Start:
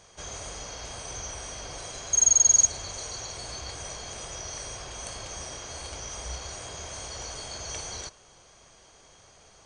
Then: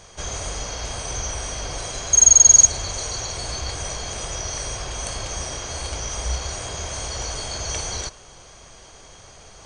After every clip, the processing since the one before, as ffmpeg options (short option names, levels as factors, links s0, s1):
-af "lowshelf=f=70:g=8,areverse,acompressor=mode=upward:threshold=0.00355:ratio=2.5,areverse,volume=2.51"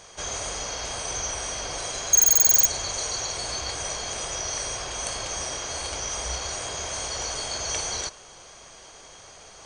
-af "aeval=exprs='0.316*(abs(mod(val(0)/0.316+3,4)-2)-1)':c=same,lowshelf=f=190:g=-11"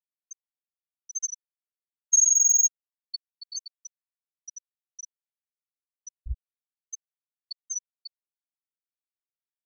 -af "volume=13.3,asoftclip=hard,volume=0.075,afftfilt=real='re*gte(hypot(re,im),0.251)':imag='im*gte(hypot(re,im),0.251)':win_size=1024:overlap=0.75,volume=2.66"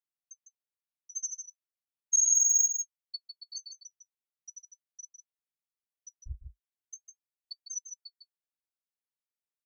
-af "flanger=delay=6.2:depth=4.3:regen=-47:speed=0.38:shape=triangular,aecho=1:1:153:0.422,volume=0.841"